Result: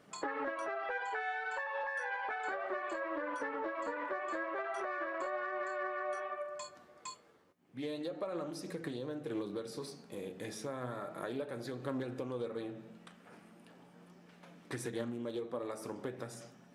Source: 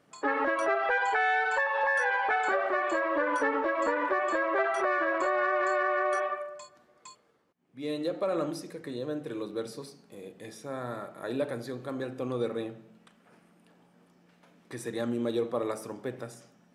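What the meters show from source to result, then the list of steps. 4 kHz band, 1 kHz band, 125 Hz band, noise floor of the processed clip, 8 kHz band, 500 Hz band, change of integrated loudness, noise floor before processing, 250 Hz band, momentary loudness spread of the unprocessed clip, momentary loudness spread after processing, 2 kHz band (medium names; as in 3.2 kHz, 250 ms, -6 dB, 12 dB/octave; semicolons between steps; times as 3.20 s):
-6.5 dB, -10.5 dB, -4.0 dB, -61 dBFS, -3.5 dB, -9.0 dB, -10.0 dB, -64 dBFS, -7.0 dB, 14 LU, 17 LU, -11.0 dB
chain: compression, threshold -40 dBFS, peak gain reduction 16 dB; flange 0.35 Hz, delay 4.5 ms, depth 8.4 ms, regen +68%; loudspeaker Doppler distortion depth 0.16 ms; trim +7.5 dB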